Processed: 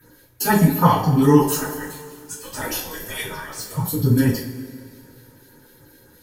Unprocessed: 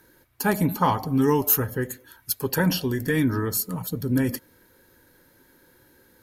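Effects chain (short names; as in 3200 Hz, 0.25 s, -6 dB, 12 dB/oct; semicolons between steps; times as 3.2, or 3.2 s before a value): 1.47–3.77 spectral gate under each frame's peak -15 dB weak; phaser stages 4, 4 Hz, lowest notch 120–4100 Hz; two-slope reverb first 0.4 s, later 2.5 s, from -18 dB, DRR -10 dB; gain -2 dB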